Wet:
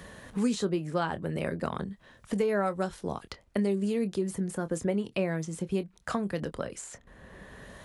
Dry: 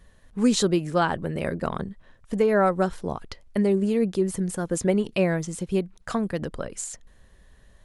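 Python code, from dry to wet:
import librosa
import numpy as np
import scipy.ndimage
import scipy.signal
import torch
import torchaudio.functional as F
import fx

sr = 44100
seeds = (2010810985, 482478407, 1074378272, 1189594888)

y = scipy.signal.sosfilt(scipy.signal.butter(2, 43.0, 'highpass', fs=sr, output='sos'), x)
y = fx.doubler(y, sr, ms=25.0, db=-13.0)
y = fx.band_squash(y, sr, depth_pct=70)
y = F.gain(torch.from_numpy(y), -6.5).numpy()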